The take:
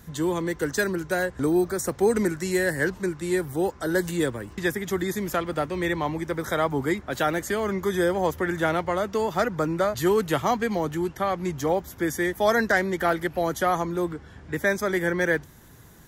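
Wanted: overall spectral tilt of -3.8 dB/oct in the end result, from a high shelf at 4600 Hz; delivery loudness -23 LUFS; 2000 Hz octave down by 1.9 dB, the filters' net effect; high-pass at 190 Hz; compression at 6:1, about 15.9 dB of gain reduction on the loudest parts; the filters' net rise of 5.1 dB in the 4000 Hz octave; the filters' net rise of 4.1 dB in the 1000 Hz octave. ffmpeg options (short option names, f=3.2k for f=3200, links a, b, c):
-af "highpass=190,equalizer=f=1k:t=o:g=7,equalizer=f=2k:t=o:g=-7,equalizer=f=4k:t=o:g=6,highshelf=f=4.6k:g=4,acompressor=threshold=-32dB:ratio=6,volume=12.5dB"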